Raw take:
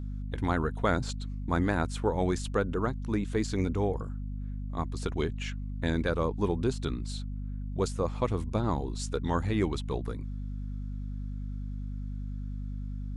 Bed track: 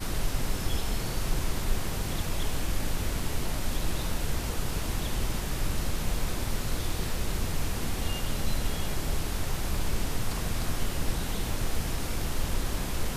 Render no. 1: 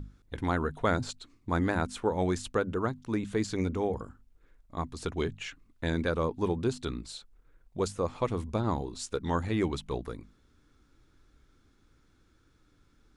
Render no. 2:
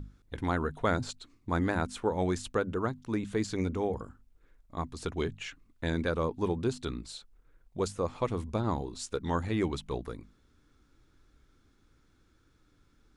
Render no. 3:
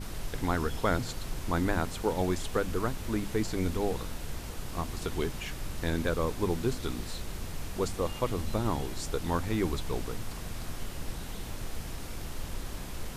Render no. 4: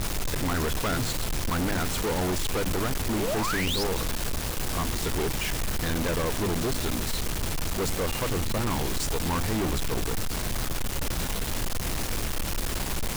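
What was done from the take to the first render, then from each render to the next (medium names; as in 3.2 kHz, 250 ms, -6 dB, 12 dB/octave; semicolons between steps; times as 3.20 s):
hum notches 50/100/150/200/250 Hz
trim -1 dB
add bed track -8 dB
3.17–3.84 s: painted sound rise 320–5600 Hz -35 dBFS; companded quantiser 2-bit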